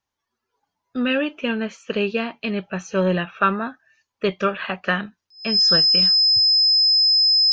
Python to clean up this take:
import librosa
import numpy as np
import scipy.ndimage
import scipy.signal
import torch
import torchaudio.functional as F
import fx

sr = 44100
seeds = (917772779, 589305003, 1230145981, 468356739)

y = fx.notch(x, sr, hz=5100.0, q=30.0)